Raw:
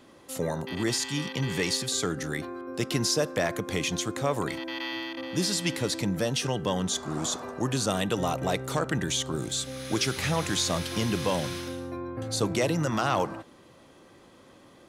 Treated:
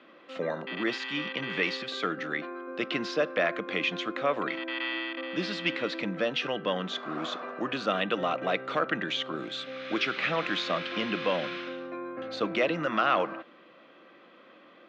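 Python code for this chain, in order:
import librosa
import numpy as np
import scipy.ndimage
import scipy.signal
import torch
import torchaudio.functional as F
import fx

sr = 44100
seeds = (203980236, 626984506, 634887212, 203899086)

y = fx.cabinet(x, sr, low_hz=230.0, low_slope=24, high_hz=3300.0, hz=(260.0, 400.0, 880.0, 1300.0, 2500.0), db=(-6, -7, -9, 4, 3))
y = y * librosa.db_to_amplitude(2.5)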